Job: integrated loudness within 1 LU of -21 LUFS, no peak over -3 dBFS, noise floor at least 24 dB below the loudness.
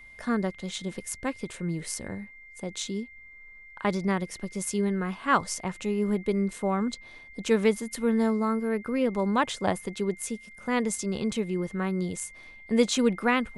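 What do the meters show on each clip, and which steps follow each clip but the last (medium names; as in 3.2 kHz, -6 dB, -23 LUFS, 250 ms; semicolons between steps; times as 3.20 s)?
steady tone 2.1 kHz; tone level -47 dBFS; loudness -28.5 LUFS; peak level -9.0 dBFS; loudness target -21.0 LUFS
-> band-stop 2.1 kHz, Q 30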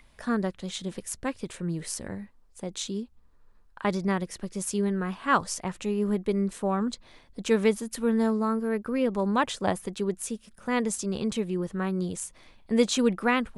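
steady tone not found; loudness -28.5 LUFS; peak level -9.5 dBFS; loudness target -21.0 LUFS
-> trim +7.5 dB; peak limiter -3 dBFS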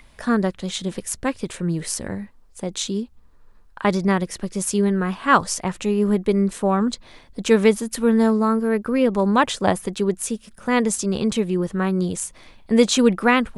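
loudness -21.0 LUFS; peak level -3.0 dBFS; noise floor -50 dBFS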